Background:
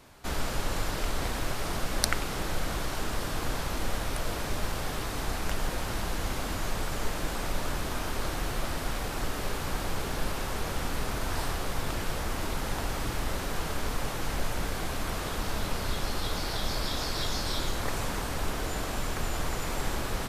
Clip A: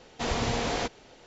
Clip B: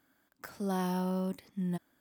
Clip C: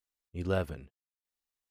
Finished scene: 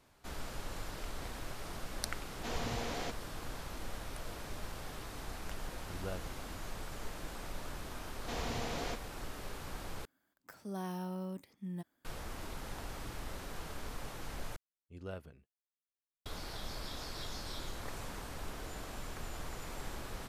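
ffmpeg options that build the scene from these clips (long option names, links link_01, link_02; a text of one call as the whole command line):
ffmpeg -i bed.wav -i cue0.wav -i cue1.wav -i cue2.wav -filter_complex "[1:a]asplit=2[link_01][link_02];[3:a]asplit=2[link_03][link_04];[0:a]volume=-12dB,asplit=3[link_05][link_06][link_07];[link_05]atrim=end=10.054[link_08];[2:a]atrim=end=2,asetpts=PTS-STARTPTS,volume=-8dB[link_09];[link_06]atrim=start=12.046:end=14.564[link_10];[link_04]atrim=end=1.7,asetpts=PTS-STARTPTS,volume=-14dB[link_11];[link_07]atrim=start=16.256[link_12];[link_01]atrim=end=1.26,asetpts=PTS-STARTPTS,volume=-10.5dB,afade=type=in:duration=0.004:curve=hsin,afade=type=out:start_time=1.256:duration=0.004:curve=hsin,adelay=2240[link_13];[link_03]atrim=end=1.7,asetpts=PTS-STARTPTS,volume=-12dB,afade=type=in:duration=0.004:curve=hsin,afade=type=out:start_time=1.696:duration=0.004:curve=hsin,adelay=5550[link_14];[link_02]atrim=end=1.26,asetpts=PTS-STARTPTS,volume=-10.5dB,afade=type=in:duration=0.004:curve=hsin,afade=type=out:start_time=1.256:duration=0.004:curve=hsin,adelay=8080[link_15];[link_08][link_09]acrossfade=duration=0.004:curve1=hsin:curve2=hsin[link_16];[link_16][link_10]acrossfade=duration=0.004:curve1=hsin:curve2=hsin[link_17];[link_17][link_11]acrossfade=duration=0.004:curve1=hsin:curve2=hsin[link_18];[link_18][link_12]acrossfade=duration=0.004:curve1=hsin:curve2=hsin[link_19];[link_19][link_13][link_14][link_15]amix=inputs=4:normalize=0" out.wav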